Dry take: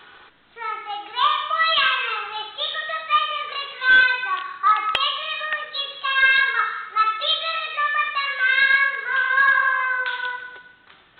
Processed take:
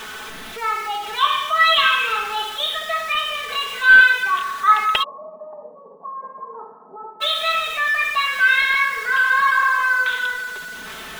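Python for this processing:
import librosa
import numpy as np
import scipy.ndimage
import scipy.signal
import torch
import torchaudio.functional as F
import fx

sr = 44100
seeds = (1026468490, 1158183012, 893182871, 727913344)

y = x + 0.5 * 10.0 ** (-31.5 / 20.0) * np.sign(x)
y = fx.cheby1_bandpass(y, sr, low_hz=170.0, high_hz=1000.0, order=5, at=(5.02, 7.2), fade=0.02)
y = y + 0.68 * np.pad(y, (int(4.6 * sr / 1000.0), 0))[:len(y)]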